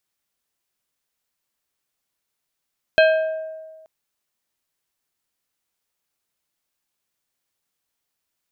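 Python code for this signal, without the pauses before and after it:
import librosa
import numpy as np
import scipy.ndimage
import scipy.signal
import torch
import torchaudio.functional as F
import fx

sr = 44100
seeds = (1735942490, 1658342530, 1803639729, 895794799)

y = fx.strike_glass(sr, length_s=0.88, level_db=-10, body='plate', hz=636.0, decay_s=1.5, tilt_db=4.5, modes=5)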